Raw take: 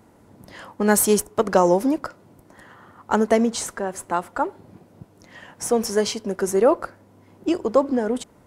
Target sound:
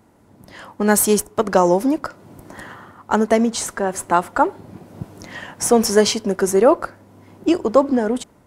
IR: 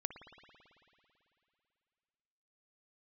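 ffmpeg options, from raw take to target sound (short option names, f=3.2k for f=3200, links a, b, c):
-af "equalizer=f=480:w=5.1:g=-2.5,dynaudnorm=f=130:g=7:m=16dB,volume=-1dB"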